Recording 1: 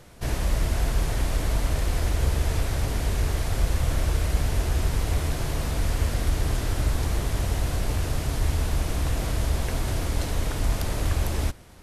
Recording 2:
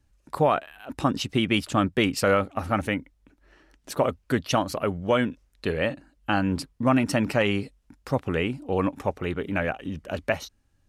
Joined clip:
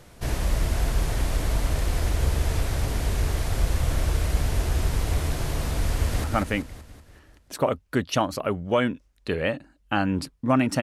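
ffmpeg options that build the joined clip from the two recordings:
ffmpeg -i cue0.wav -i cue1.wav -filter_complex "[0:a]apad=whole_dur=10.82,atrim=end=10.82,atrim=end=6.242[link_01];[1:a]atrim=start=2.608:end=7.19[link_02];[link_01][link_02]acrossfade=duration=0.004:curve1=hsin:curve2=hsin,asplit=2[link_03][link_04];[link_04]afade=type=in:start_time=5.93:duration=0.01,afade=type=out:start_time=6.24:duration=0.01,aecho=0:1:190|380|570|760|950|1140|1330:0.562341|0.309288|0.170108|0.0935595|0.0514577|0.0283018|0.015566[link_05];[link_03][link_05]amix=inputs=2:normalize=0" out.wav

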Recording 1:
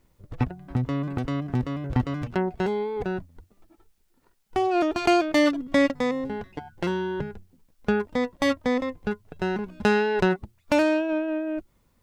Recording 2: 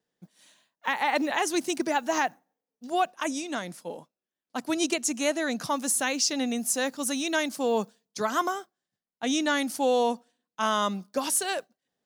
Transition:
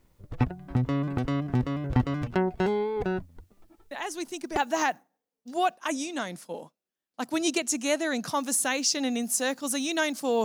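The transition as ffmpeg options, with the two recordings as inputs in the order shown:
ffmpeg -i cue0.wav -i cue1.wav -filter_complex "[1:a]asplit=2[link_01][link_02];[0:a]apad=whole_dur=10.44,atrim=end=10.44,atrim=end=4.572[link_03];[link_02]atrim=start=1.928:end=7.8[link_04];[link_01]atrim=start=1.27:end=1.93,asetpts=PTS-STARTPTS,volume=-7.5dB,afade=type=in:duration=0.004:curve=hsin,afade=type=out:start_time=0.656:duration=0.004:curve=hsin,adelay=3910[link_05];[link_03][link_04]acrossfade=duration=0.004:curve1=hsin:curve2=hsin[link_06];[link_06][link_05]amix=inputs=2:normalize=0" out.wav

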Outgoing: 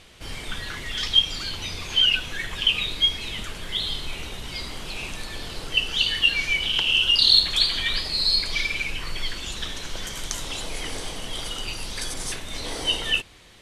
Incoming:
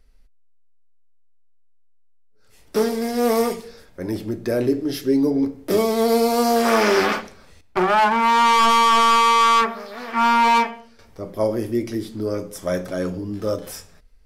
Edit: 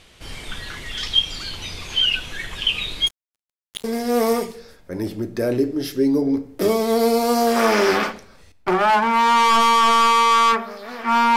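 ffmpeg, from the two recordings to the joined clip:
ffmpeg -i cue0.wav -i cue1.wav -filter_complex "[0:a]asplit=3[link_01][link_02][link_03];[link_01]afade=type=out:start_time=3.06:duration=0.02[link_04];[link_02]acrusher=bits=2:mix=0:aa=0.5,afade=type=in:start_time=3.06:duration=0.02,afade=type=out:start_time=3.84:duration=0.02[link_05];[link_03]afade=type=in:start_time=3.84:duration=0.02[link_06];[link_04][link_05][link_06]amix=inputs=3:normalize=0,apad=whole_dur=11.36,atrim=end=11.36,atrim=end=3.842[link_07];[1:a]atrim=start=2.928:end=10.45[link_08];[link_07][link_08]acrossfade=duration=0.004:curve1=hsin:curve2=hsin" out.wav

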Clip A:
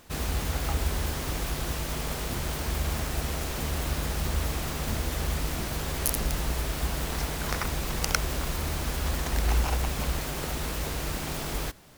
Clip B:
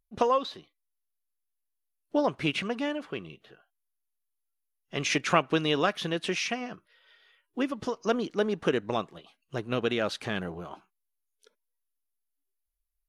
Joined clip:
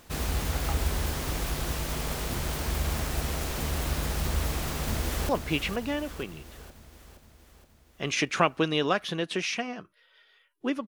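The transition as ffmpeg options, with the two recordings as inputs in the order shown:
ffmpeg -i cue0.wav -i cue1.wav -filter_complex "[0:a]apad=whole_dur=10.87,atrim=end=10.87,atrim=end=5.292[link_01];[1:a]atrim=start=2.218:end=7.8[link_02];[link_01][link_02]acrossfade=duration=0.004:curve1=hsin:curve2=hsin,asplit=2[link_03][link_04];[link_04]afade=type=in:start_time=4.57:duration=0.01,afade=type=out:start_time=5.29:duration=0.01,aecho=0:1:470|940|1410|1880|2350|2820|3290|3760:0.375837|0.225502|0.135301|0.0811809|0.0487085|0.0292251|0.0175351|0.010521[link_05];[link_03][link_05]amix=inputs=2:normalize=0" out.wav

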